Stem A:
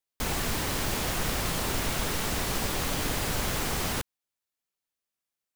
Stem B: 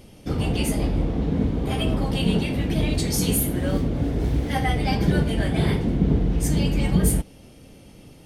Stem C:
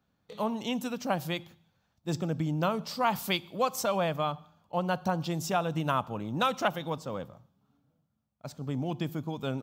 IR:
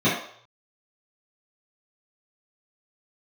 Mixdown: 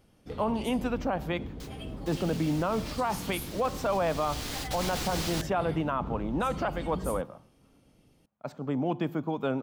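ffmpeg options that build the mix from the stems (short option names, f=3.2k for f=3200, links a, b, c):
-filter_complex "[0:a]equalizer=f=4.4k:w=0.84:g=8.5,adelay=1400,volume=-7dB,afade=t=in:st=4.04:d=0.7:silence=0.266073[a];[1:a]volume=-16.5dB[b];[2:a]alimiter=limit=-20dB:level=0:latency=1:release=360,acontrast=60,acrossover=split=200 2500:gain=0.251 1 0.158[c][d][e];[c][d][e]amix=inputs=3:normalize=0,volume=0dB,asplit=2[f][g];[g]apad=whole_len=306699[h];[a][h]sidechaingate=range=-24dB:threshold=-60dB:ratio=16:detection=peak[i];[i][b][f]amix=inputs=3:normalize=0,alimiter=limit=-19dB:level=0:latency=1:release=10"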